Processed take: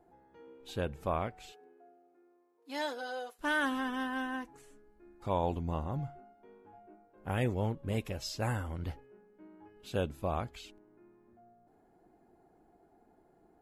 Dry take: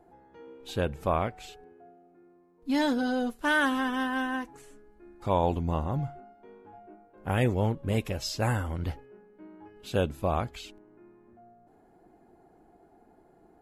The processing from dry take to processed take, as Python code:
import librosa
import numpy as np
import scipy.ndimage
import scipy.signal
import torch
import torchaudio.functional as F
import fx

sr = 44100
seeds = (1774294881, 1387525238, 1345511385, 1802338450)

y = fx.highpass(x, sr, hz=fx.line((1.51, 220.0), (3.38, 520.0)), slope=24, at=(1.51, 3.38), fade=0.02)
y = y * librosa.db_to_amplitude(-6.0)